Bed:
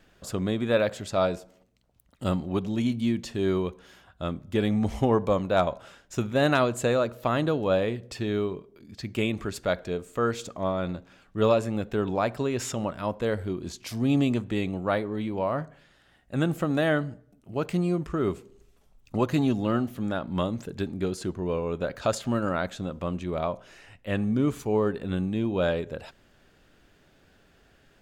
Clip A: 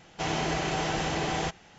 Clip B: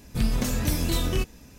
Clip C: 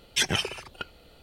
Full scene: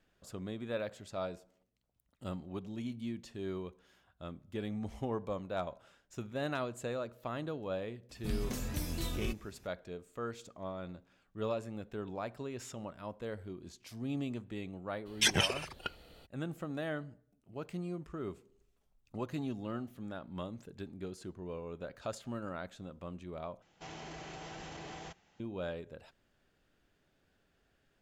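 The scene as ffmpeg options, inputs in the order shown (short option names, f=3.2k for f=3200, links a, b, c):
-filter_complex "[0:a]volume=-14dB[a];[1:a]alimiter=limit=-23dB:level=0:latency=1:release=14[b];[a]asplit=2[c][d];[c]atrim=end=23.624[e];[b]atrim=end=1.78,asetpts=PTS-STARTPTS,volume=-15dB[f];[d]atrim=start=25.396[g];[2:a]atrim=end=1.58,asetpts=PTS-STARTPTS,volume=-12dB,afade=t=in:d=0.004:c=hsin,afade=t=out:st=1.576:d=0.004:c=hsin,adelay=8090[h];[3:a]atrim=end=1.22,asetpts=PTS-STARTPTS,volume=-3dB,afade=t=in:d=0.02,afade=t=out:st=1.2:d=0.02,adelay=15050[i];[e][f]acrossfade=d=0.004:c1=hsin:c2=hsin[j];[j][g]acrossfade=d=0.004:c1=hsin:c2=hsin[k];[k][h][i]amix=inputs=3:normalize=0"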